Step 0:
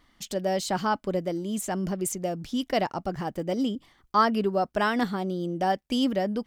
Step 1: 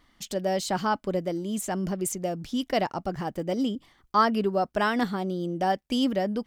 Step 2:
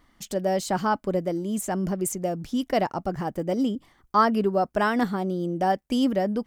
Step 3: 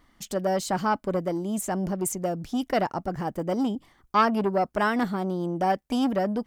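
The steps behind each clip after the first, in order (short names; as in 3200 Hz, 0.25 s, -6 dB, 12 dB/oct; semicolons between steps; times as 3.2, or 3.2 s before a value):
nothing audible
bell 3600 Hz -6 dB 1.5 oct; gain +2.5 dB
core saturation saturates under 860 Hz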